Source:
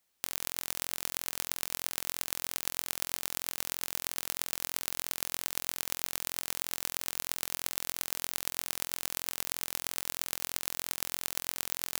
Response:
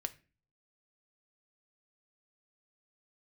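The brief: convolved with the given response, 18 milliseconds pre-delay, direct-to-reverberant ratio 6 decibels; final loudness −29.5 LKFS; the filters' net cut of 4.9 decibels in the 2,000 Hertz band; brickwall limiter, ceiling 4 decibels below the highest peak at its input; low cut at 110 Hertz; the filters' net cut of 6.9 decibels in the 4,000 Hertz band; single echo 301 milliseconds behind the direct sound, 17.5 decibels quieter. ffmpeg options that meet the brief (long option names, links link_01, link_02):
-filter_complex "[0:a]highpass=110,equalizer=frequency=2000:width_type=o:gain=-4,equalizer=frequency=4000:width_type=o:gain=-8,alimiter=limit=-8.5dB:level=0:latency=1,aecho=1:1:301:0.133,asplit=2[link_01][link_02];[1:a]atrim=start_sample=2205,adelay=18[link_03];[link_02][link_03]afir=irnorm=-1:irlink=0,volume=-5dB[link_04];[link_01][link_04]amix=inputs=2:normalize=0,volume=6.5dB"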